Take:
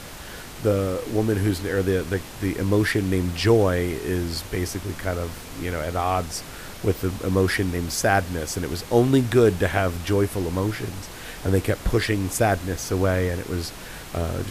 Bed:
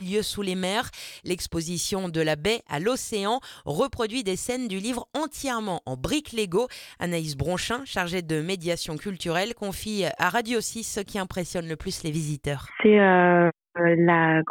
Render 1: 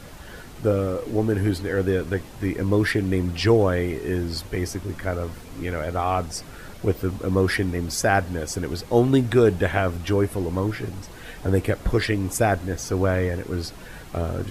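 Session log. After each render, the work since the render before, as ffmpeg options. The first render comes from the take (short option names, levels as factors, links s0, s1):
-af "afftdn=nr=8:nf=-38"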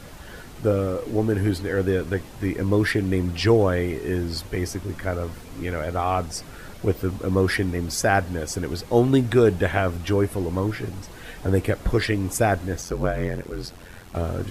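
-filter_complex "[0:a]asettb=1/sr,asplit=3[s0][s1][s2];[s0]atrim=end=12.814[s3];[s1]atrim=start=12.81:end=14.15,asetpts=PTS-STARTPTS,afade=t=in:d=0.004:c=qsin,afade=t=out:st=1.336:d=0.004:c=qsin,aeval=exprs='val(0)*sin(2*PI*44*n/s)':c=same[s4];[s2]atrim=start=14.146[s5];[s3][s4]acrossfade=d=0.004:c1=hsin:c2=qsin[s6];[s6][s5]acrossfade=d=0.004:c1=qsin:c2=hsin"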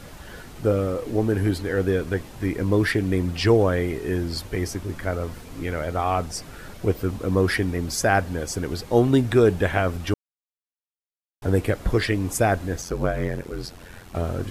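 -filter_complex "[0:a]asplit=3[s0][s1][s2];[s0]atrim=end=10.14,asetpts=PTS-STARTPTS,afade=t=out:st=10.136:d=0.004:c=hsin[s3];[s1]atrim=start=10.14:end=11.42,asetpts=PTS-STARTPTS,volume=0[s4];[s2]atrim=start=11.42,asetpts=PTS-STARTPTS,afade=t=in:d=0.004:c=hsin[s5];[s3][s4][s5]concat=n=3:v=0:a=1"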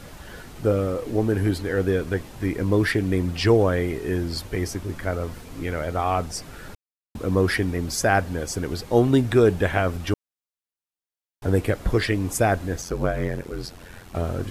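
-filter_complex "[0:a]asplit=3[s0][s1][s2];[s0]atrim=end=6.75,asetpts=PTS-STARTPTS,afade=t=out:st=6.746:d=0.004:c=hsin[s3];[s1]atrim=start=6.75:end=7.15,asetpts=PTS-STARTPTS,volume=0[s4];[s2]atrim=start=7.15,asetpts=PTS-STARTPTS,afade=t=in:d=0.004:c=hsin[s5];[s3][s4][s5]concat=n=3:v=0:a=1"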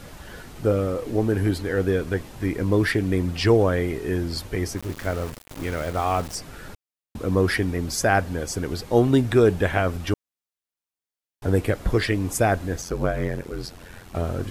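-filter_complex "[0:a]asettb=1/sr,asplit=3[s0][s1][s2];[s0]atrim=end=4.774[s3];[s1]atrim=start=4.77:end=6.35,asetpts=PTS-STARTPTS,afade=t=in:d=0.004:c=qsin,afade=t=out:st=1.576:d=0.004:c=qsin,aeval=exprs='val(0)*gte(abs(val(0)),0.0211)':c=same[s4];[s2]atrim=start=6.346[s5];[s3][s4]acrossfade=d=0.004:c1=hsin:c2=qsin[s6];[s6][s5]acrossfade=d=0.004:c1=qsin:c2=hsin"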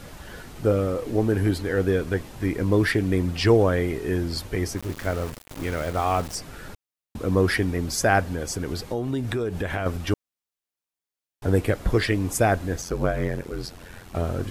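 -filter_complex "[0:a]asettb=1/sr,asplit=3[s0][s1][s2];[s0]atrim=end=8.344[s3];[s1]atrim=start=8.34:end=9.86,asetpts=PTS-STARTPTS,afade=t=in:d=0.004:c=qsin,afade=t=out:st=1.516:d=0.004:c=qsin,acompressor=threshold=0.0708:ratio=6:attack=3.2:release=140:knee=1:detection=peak[s4];[s2]atrim=start=9.856[s5];[s3][s4]acrossfade=d=0.004:c1=hsin:c2=qsin[s6];[s6][s5]acrossfade=d=0.004:c1=qsin:c2=hsin"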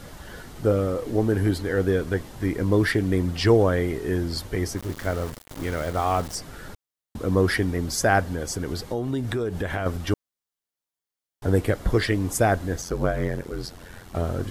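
-af "equalizer=f=2500:t=o:w=0.22:g=-5.5"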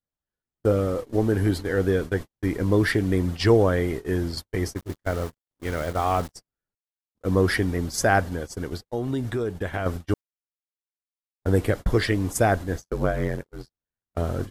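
-af "agate=range=0.00224:threshold=0.0398:ratio=16:detection=peak"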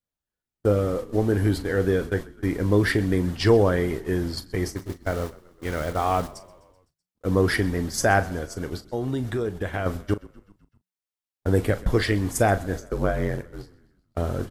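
-filter_complex "[0:a]asplit=2[s0][s1];[s1]adelay=39,volume=0.211[s2];[s0][s2]amix=inputs=2:normalize=0,asplit=6[s3][s4][s5][s6][s7][s8];[s4]adelay=127,afreqshift=-37,volume=0.0891[s9];[s5]adelay=254,afreqshift=-74,volume=0.0525[s10];[s6]adelay=381,afreqshift=-111,volume=0.0309[s11];[s7]adelay=508,afreqshift=-148,volume=0.0184[s12];[s8]adelay=635,afreqshift=-185,volume=0.0108[s13];[s3][s9][s10][s11][s12][s13]amix=inputs=6:normalize=0"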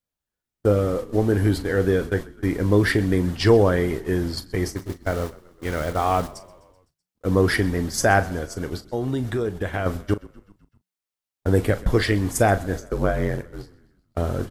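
-af "volume=1.26"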